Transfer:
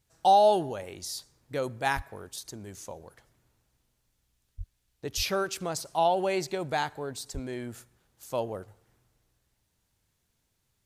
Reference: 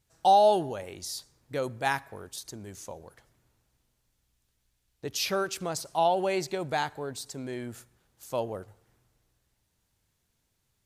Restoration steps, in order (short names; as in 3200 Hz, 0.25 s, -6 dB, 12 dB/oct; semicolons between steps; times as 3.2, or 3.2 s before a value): de-plosive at 1.95/4.57/5.16/7.33